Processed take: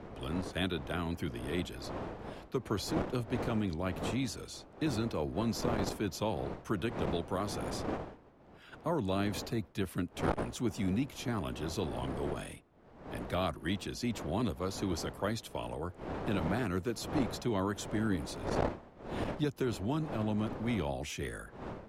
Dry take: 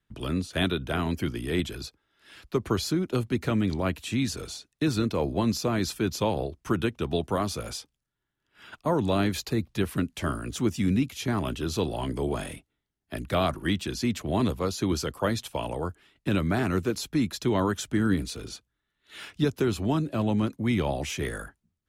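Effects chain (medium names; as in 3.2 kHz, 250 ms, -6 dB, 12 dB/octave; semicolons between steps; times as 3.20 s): wind noise 600 Hz -33 dBFS; transformer saturation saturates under 250 Hz; trim -7.5 dB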